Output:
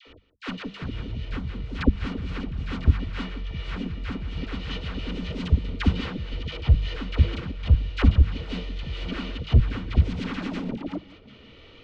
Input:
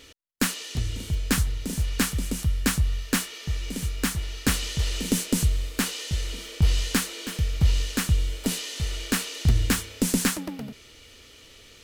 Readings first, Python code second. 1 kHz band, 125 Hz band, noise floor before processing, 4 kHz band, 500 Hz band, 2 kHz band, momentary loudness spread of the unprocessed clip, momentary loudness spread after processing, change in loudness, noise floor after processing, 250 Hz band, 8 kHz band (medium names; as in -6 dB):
-1.5 dB, +2.5 dB, -51 dBFS, -6.5 dB, -0.5 dB, -5.0 dB, 7 LU, 12 LU, -0.5 dB, -50 dBFS, -1.5 dB, under -25 dB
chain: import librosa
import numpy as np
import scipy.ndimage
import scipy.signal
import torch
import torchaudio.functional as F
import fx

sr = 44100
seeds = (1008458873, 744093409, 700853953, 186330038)

p1 = fx.reverse_delay(x, sr, ms=313, wet_db=-2.0)
p2 = scipy.signal.sosfilt(scipy.signal.butter(4, 3800.0, 'lowpass', fs=sr, output='sos'), p1)
p3 = fx.notch(p2, sr, hz=1700.0, q=9.7)
p4 = p3 + fx.echo_single(p3, sr, ms=168, db=-12.5, dry=0)
p5 = fx.level_steps(p4, sr, step_db=18)
p6 = fx.high_shelf(p5, sr, hz=2500.0, db=-8.5)
p7 = fx.hum_notches(p6, sr, base_hz=50, count=4)
p8 = fx.dispersion(p7, sr, late='lows', ms=75.0, hz=780.0)
y = p8 * 10.0 ** (7.0 / 20.0)